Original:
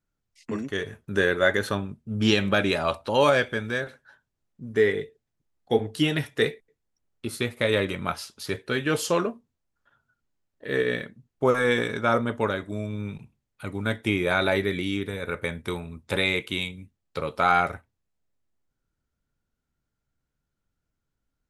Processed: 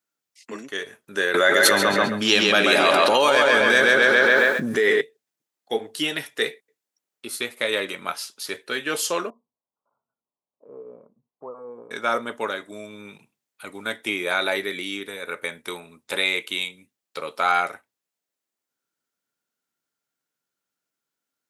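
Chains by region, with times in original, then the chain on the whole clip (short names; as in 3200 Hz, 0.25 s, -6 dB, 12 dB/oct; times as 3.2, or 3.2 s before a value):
1.34–5.01 tape echo 0.135 s, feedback 49%, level -3 dB, low-pass 4700 Hz + fast leveller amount 100%
9.3–11.91 elliptic low-pass 1100 Hz + bell 330 Hz -6 dB 0.72 oct + compressor 1.5:1, threshold -51 dBFS
whole clip: HPF 260 Hz 12 dB/oct; tilt +2 dB/oct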